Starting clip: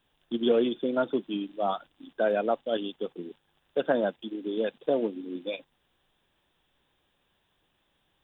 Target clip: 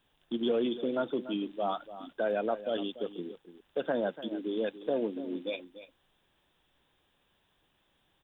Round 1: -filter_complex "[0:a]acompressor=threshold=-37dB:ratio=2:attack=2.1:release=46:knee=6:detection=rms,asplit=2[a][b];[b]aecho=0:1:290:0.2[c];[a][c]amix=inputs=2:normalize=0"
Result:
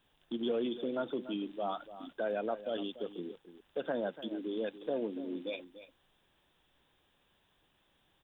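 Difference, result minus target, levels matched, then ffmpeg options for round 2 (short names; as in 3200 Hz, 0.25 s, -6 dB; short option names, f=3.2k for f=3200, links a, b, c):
compressor: peak gain reduction +4 dB
-filter_complex "[0:a]acompressor=threshold=-28.5dB:ratio=2:attack=2.1:release=46:knee=6:detection=rms,asplit=2[a][b];[b]aecho=0:1:290:0.2[c];[a][c]amix=inputs=2:normalize=0"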